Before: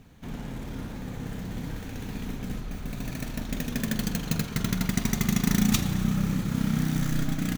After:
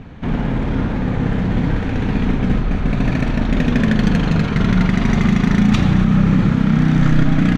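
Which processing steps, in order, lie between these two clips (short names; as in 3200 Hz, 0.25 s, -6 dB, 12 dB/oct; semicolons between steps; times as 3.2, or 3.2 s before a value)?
LPF 2500 Hz 12 dB/oct; maximiser +21 dB; gain -4 dB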